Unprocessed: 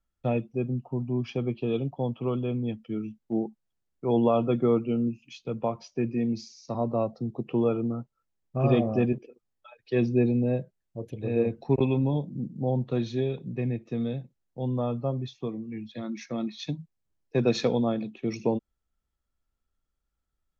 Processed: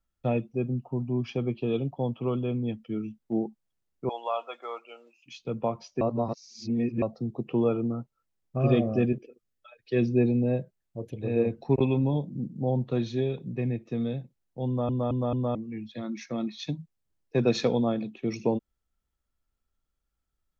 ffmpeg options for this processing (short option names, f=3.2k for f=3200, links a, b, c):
-filter_complex "[0:a]asettb=1/sr,asplit=3[a][b][c];[a]atrim=end=4.094[d];[b]atrim=start=4.09:end=5.26,asetpts=PTS-STARTPTS,afade=t=in:d=0.004:c=qsin,afade=t=out:st=1.166:d=0.004:c=qsin,highpass=f=720:w=0.5412,highpass=f=720:w=1.3066[e];[c]atrim=start=5.256[f];[d][e]acrossfade=d=0.004:c1=hsin:c2=qsin[g];[g][f]acrossfade=d=0.004:c1=qsin:c2=hsin,asettb=1/sr,asplit=3[h][i][j];[h]atrim=end=8.594[k];[i]atrim=start=8.59:end=10.09,asetpts=PTS-STARTPTS,afade=t=in:d=0.004:c=qsin,afade=t=out:st=1.496:d=0.004:c=qsin,equalizer=f=900:t=o:w=0.33:g=-14.5[l];[j]atrim=start=10.086[m];[k][l]acrossfade=d=0.004:c1=hsin:c2=qsin[n];[n][m]acrossfade=d=0.004:c1=qsin:c2=hsin,asplit=7[o][p][q][r][s][t][u];[o]atrim=end=6.012[v];[p]atrim=start=6.008:end=7.022,asetpts=PTS-STARTPTS,areverse[w];[q]atrim=start=7.018:end=14.892[x];[r]atrim=start=14.668:end=14.892[y];[s]atrim=start=14.668:end=14.892[z];[t]atrim=start=14.668:end=14.892[aa];[u]atrim=start=15.548[ab];[v][w]acrossfade=d=0.004:c1=hsin:c2=hsin[ac];[ac][x]acrossfade=d=0.004:c1=hsin:c2=hsin[ad];[ad][y]acrossfade=d=0.004:c1=hsin:c2=hsin[ae];[ae][z]acrossfade=d=0.004:c1=hsin:c2=hsin[af];[af][aa]acrossfade=d=0.004:c1=hsin:c2=hsin[ag];[ag][ab]acrossfade=d=0.004:c1=hsin:c2=hsin"